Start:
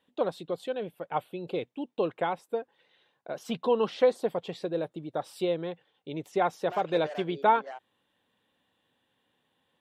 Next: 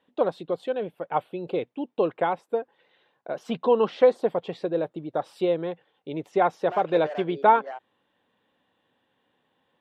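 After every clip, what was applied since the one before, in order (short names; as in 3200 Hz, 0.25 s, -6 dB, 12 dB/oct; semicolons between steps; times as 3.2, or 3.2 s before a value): LPF 1800 Hz 6 dB/oct; low shelf 170 Hz -7 dB; gain +6 dB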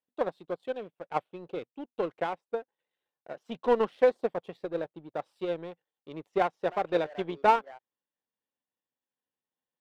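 power-law curve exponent 1.4; noise-modulated level, depth 50%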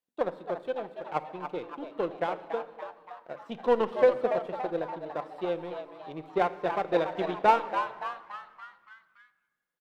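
frequency-shifting echo 0.285 s, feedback 51%, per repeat +130 Hz, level -8.5 dB; on a send at -12 dB: reverb RT60 1.5 s, pre-delay 6 ms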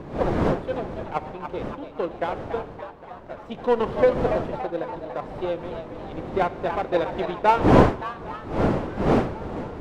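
wind noise 490 Hz -30 dBFS; swung echo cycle 1.073 s, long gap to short 3:1, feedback 59%, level -21 dB; gain +3 dB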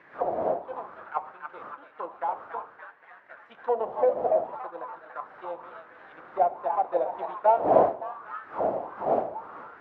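auto-wah 670–2100 Hz, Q 4.5, down, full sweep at -19.5 dBFS; flange 0.64 Hz, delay 5.7 ms, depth 6.1 ms, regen -73%; gain +8.5 dB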